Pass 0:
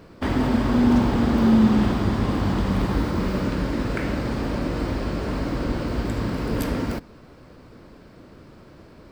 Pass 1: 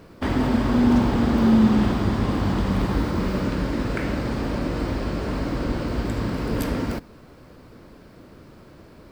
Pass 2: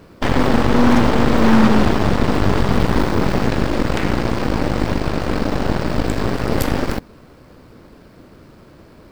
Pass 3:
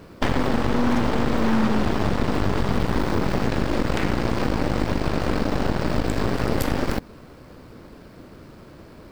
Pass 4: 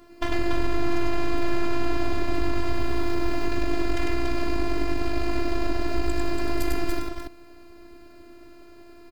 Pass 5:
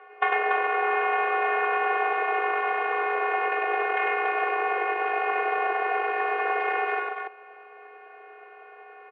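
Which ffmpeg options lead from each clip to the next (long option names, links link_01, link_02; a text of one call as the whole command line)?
ffmpeg -i in.wav -af "acrusher=bits=10:mix=0:aa=0.000001" out.wav
ffmpeg -i in.wav -af "aeval=exprs='0.447*(cos(1*acos(clip(val(0)/0.447,-1,1)))-cos(1*PI/2))+0.126*(cos(8*acos(clip(val(0)/0.447,-1,1)))-cos(8*PI/2))':channel_layout=same,volume=2.5dB" out.wav
ffmpeg -i in.wav -af "acompressor=threshold=-16dB:ratio=6" out.wav
ffmpeg -i in.wav -af "afftfilt=real='hypot(re,im)*cos(PI*b)':imag='0':win_size=512:overlap=0.75,aecho=1:1:99.13|285.7:0.794|0.562,volume=-2.5dB" out.wav
ffmpeg -i in.wav -af "highpass=frequency=480:width_type=q:width=0.5412,highpass=frequency=480:width_type=q:width=1.307,lowpass=frequency=2400:width_type=q:width=0.5176,lowpass=frequency=2400:width_type=q:width=0.7071,lowpass=frequency=2400:width_type=q:width=1.932,afreqshift=72,volume=9dB" out.wav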